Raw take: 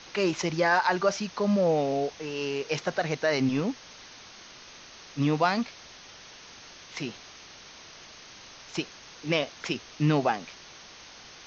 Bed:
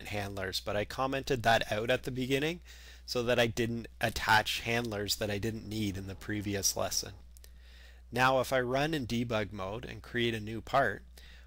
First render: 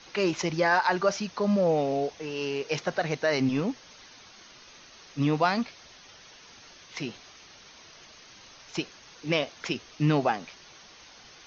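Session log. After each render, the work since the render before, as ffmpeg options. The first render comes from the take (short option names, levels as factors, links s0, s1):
-af "afftdn=nr=6:nf=-49"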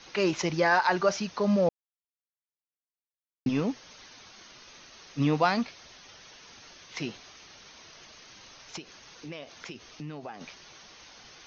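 -filter_complex "[0:a]asettb=1/sr,asplit=3[s0][s1][s2];[s0]atrim=end=8.764[s3];[s1]atrim=start=8.76:end=10.41,asetpts=PTS-STARTPTS,afade=t=in:d=0.004:c=qsin,afade=t=out:st=1.646:d=0.004:c=qsin,acompressor=threshold=0.0112:ratio=4:attack=3.2:release=140:knee=1:detection=peak[s4];[s2]atrim=start=10.406[s5];[s3][s4]acrossfade=d=0.004:c1=hsin:c2=qsin[s6];[s6][s5]acrossfade=d=0.004:c1=qsin:c2=hsin,asplit=3[s7][s8][s9];[s7]atrim=end=1.69,asetpts=PTS-STARTPTS,afade=t=out:st=1.686:d=0.004:c=hsin[s10];[s8]atrim=start=1.69:end=3.46,asetpts=PTS-STARTPTS,volume=0[s11];[s9]atrim=start=3.46,asetpts=PTS-STARTPTS,afade=t=in:d=0.004:c=hsin[s12];[s10][s11][s12]concat=n=3:v=0:a=1"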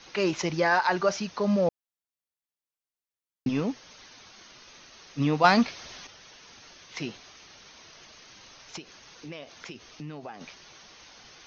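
-filter_complex "[0:a]asettb=1/sr,asplit=3[s0][s1][s2];[s0]atrim=end=5.444[s3];[s1]atrim=start=5.44:end=6.07,asetpts=PTS-STARTPTS,afade=t=in:d=0.004:c=qsin,afade=t=out:st=0.626:d=0.004:c=qsin,acontrast=82[s4];[s2]atrim=start=6.066[s5];[s3][s4]acrossfade=d=0.004:c1=hsin:c2=qsin[s6];[s6][s5]acrossfade=d=0.004:c1=qsin:c2=hsin"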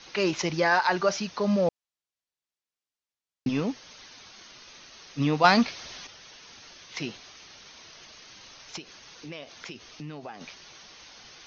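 -af "lowpass=5800,highshelf=f=4100:g=7.5"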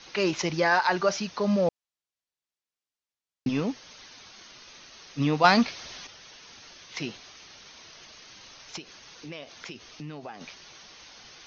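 -af anull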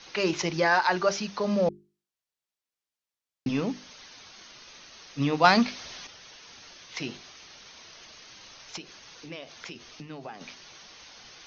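-af "bandreject=f=50:t=h:w=6,bandreject=f=100:t=h:w=6,bandreject=f=150:t=h:w=6,bandreject=f=200:t=h:w=6,bandreject=f=250:t=h:w=6,bandreject=f=300:t=h:w=6,bandreject=f=350:t=h:w=6,bandreject=f=400:t=h:w=6"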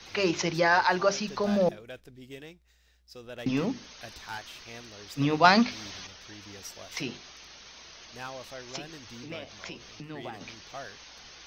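-filter_complex "[1:a]volume=0.2[s0];[0:a][s0]amix=inputs=2:normalize=0"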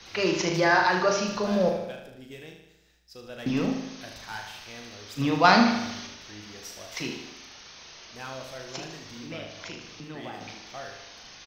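-filter_complex "[0:a]asplit=2[s0][s1];[s1]adelay=38,volume=0.447[s2];[s0][s2]amix=inputs=2:normalize=0,aecho=1:1:76|152|228|304|380|456|532:0.447|0.259|0.15|0.0872|0.0505|0.0293|0.017"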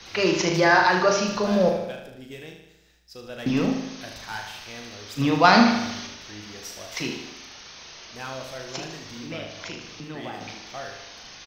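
-af "volume=1.5,alimiter=limit=0.708:level=0:latency=1"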